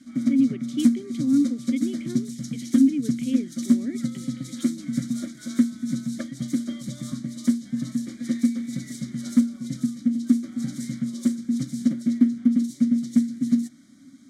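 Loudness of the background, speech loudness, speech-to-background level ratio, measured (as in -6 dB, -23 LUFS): -26.0 LUFS, -25.5 LUFS, 0.5 dB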